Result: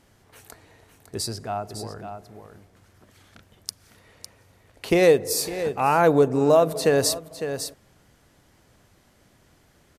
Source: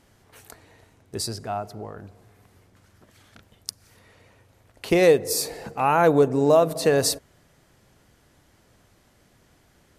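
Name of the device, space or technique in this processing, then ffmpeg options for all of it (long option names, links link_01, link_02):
ducked delay: -filter_complex "[0:a]asplit=3[link_01][link_02][link_03];[link_02]adelay=555,volume=-8.5dB[link_04];[link_03]apad=whole_len=464623[link_05];[link_04][link_05]sidechaincompress=threshold=-27dB:ratio=8:attack=16:release=534[link_06];[link_01][link_06]amix=inputs=2:normalize=0"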